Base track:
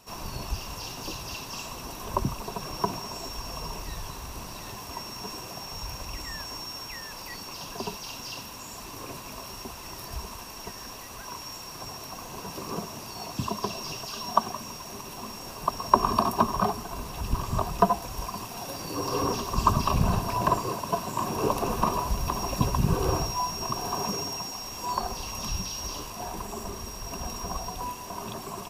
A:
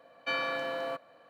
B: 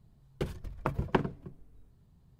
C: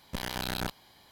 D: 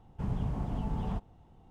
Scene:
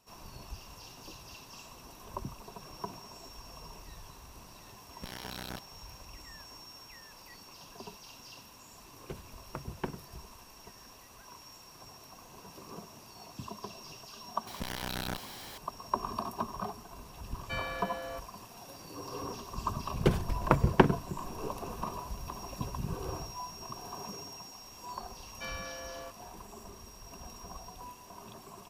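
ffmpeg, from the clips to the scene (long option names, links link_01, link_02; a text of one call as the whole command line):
ffmpeg -i bed.wav -i cue0.wav -i cue1.wav -i cue2.wav -filter_complex "[3:a]asplit=2[link_01][link_02];[2:a]asplit=2[link_03][link_04];[1:a]asplit=2[link_05][link_06];[0:a]volume=-12.5dB[link_07];[link_02]aeval=exprs='val(0)+0.5*0.0133*sgn(val(0))':channel_layout=same[link_08];[link_04]dynaudnorm=framelen=210:gausssize=3:maxgain=11.5dB[link_09];[link_01]atrim=end=1.11,asetpts=PTS-STARTPTS,volume=-8.5dB,afade=type=in:duration=0.004:curve=hsin,afade=type=out:start_time=1.106:duration=0.004:curve=hsin,adelay=215649S[link_10];[link_03]atrim=end=2.39,asetpts=PTS-STARTPTS,volume=-9.5dB,afade=type=in:duration=0.004:curve=hsin,afade=type=out:start_time=2.386:duration=0.004:curve=hsin,adelay=8690[link_11];[link_08]atrim=end=1.11,asetpts=PTS-STARTPTS,volume=-4.5dB,afade=type=in:duration=0.004:curve=hsin,afade=type=out:start_time=1.106:duration=0.004:curve=hsin,adelay=14470[link_12];[link_05]atrim=end=1.29,asetpts=PTS-STARTPTS,volume=-6dB,afade=type=in:duration=0.004:curve=hsin,afade=type=out:start_time=1.286:duration=0.004:curve=hsin,adelay=17230[link_13];[link_09]atrim=end=2.39,asetpts=PTS-STARTPTS,volume=-2.5dB,afade=type=in:duration=0.004:curve=hsin,afade=type=out:start_time=2.386:duration=0.004:curve=hsin,adelay=19650[link_14];[link_06]atrim=end=1.29,asetpts=PTS-STARTPTS,volume=-10dB,afade=type=in:duration=0.004:curve=hsin,afade=type=out:start_time=1.286:duration=0.004:curve=hsin,adelay=25140[link_15];[link_07][link_10][link_11][link_12][link_13][link_14][link_15]amix=inputs=7:normalize=0" out.wav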